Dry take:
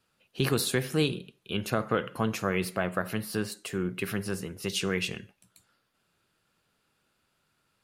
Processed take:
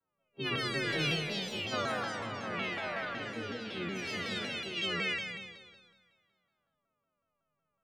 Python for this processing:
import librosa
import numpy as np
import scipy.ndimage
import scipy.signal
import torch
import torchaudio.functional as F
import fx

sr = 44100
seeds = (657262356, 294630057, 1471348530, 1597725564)

y = fx.freq_snap(x, sr, grid_st=3)
y = scipy.signal.sosfilt(scipy.signal.butter(2, 2600.0, 'lowpass', fs=sr, output='sos'), y)
y = fx.low_shelf(y, sr, hz=290.0, db=-5.0)
y = fx.env_lowpass(y, sr, base_hz=880.0, full_db=-24.0)
y = fx.level_steps(y, sr, step_db=16, at=(1.79, 3.38))
y = fx.room_flutter(y, sr, wall_m=9.9, rt60_s=0.78)
y = fx.rev_schroeder(y, sr, rt60_s=1.6, comb_ms=38, drr_db=-2.5)
y = fx.echo_pitch(y, sr, ms=526, semitones=4, count=3, db_per_echo=-6.0)
y = fx.vibrato_shape(y, sr, shape='saw_down', rate_hz=5.4, depth_cents=160.0)
y = y * librosa.db_to_amplitude(-9.0)